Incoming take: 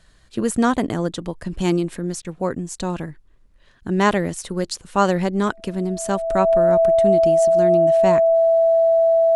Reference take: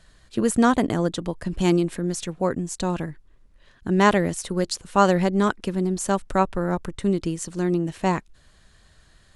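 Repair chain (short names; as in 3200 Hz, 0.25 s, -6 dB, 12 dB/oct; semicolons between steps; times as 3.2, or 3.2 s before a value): notch 660 Hz, Q 30; interpolate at 2.22, 25 ms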